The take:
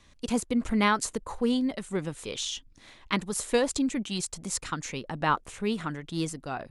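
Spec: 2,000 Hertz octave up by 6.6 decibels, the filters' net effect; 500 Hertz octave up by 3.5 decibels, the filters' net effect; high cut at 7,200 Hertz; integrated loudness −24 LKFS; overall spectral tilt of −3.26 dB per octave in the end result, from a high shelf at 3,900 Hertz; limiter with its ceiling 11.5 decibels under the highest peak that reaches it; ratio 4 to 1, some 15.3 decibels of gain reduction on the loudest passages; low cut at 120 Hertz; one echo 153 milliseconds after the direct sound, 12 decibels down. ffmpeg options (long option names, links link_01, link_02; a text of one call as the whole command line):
ffmpeg -i in.wav -af "highpass=120,lowpass=7200,equalizer=frequency=500:width_type=o:gain=3.5,equalizer=frequency=2000:width_type=o:gain=7,highshelf=frequency=3900:gain=5,acompressor=threshold=-34dB:ratio=4,alimiter=level_in=3dB:limit=-24dB:level=0:latency=1,volume=-3dB,aecho=1:1:153:0.251,volume=14dB" out.wav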